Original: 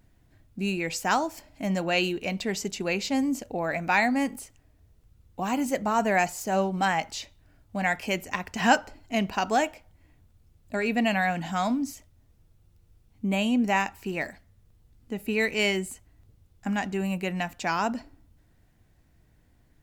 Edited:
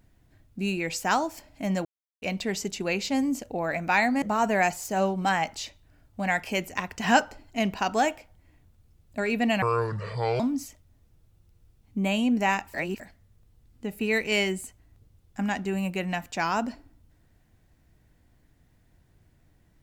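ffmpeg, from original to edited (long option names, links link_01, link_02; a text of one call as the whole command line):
ffmpeg -i in.wav -filter_complex "[0:a]asplit=8[link_01][link_02][link_03][link_04][link_05][link_06][link_07][link_08];[link_01]atrim=end=1.85,asetpts=PTS-STARTPTS,afade=type=out:start_time=1.846:duration=0.004:curve=hsin[link_09];[link_02]atrim=start=1.85:end=2.22,asetpts=PTS-STARTPTS,volume=0[link_10];[link_03]atrim=start=2.22:end=4.222,asetpts=PTS-STARTPTS,afade=type=in:duration=0.004:curve=hsin[link_11];[link_04]atrim=start=5.778:end=11.184[link_12];[link_05]atrim=start=11.18:end=11.67,asetpts=PTS-STARTPTS,asetrate=27783,aresample=44100[link_13];[link_06]atrim=start=11.666:end=14.012[link_14];[link_07]atrim=start=14.008:end=14.272,asetpts=PTS-STARTPTS,areverse[link_15];[link_08]atrim=start=14.268[link_16];[link_09][link_10][link_11]concat=n=3:v=0:a=1[link_17];[link_17][link_12]acrossfade=duration=0.004:curve1=hsin:curve2=hsin[link_18];[link_18][link_13]acrossfade=duration=0.004:curve1=hsin:curve2=hsin[link_19];[link_19][link_14]acrossfade=duration=0.004:curve1=hsin:curve2=hsin[link_20];[link_20][link_15]acrossfade=duration=0.004:curve1=hsin:curve2=hsin[link_21];[link_21][link_16]acrossfade=duration=0.004:curve1=hsin:curve2=hsin" out.wav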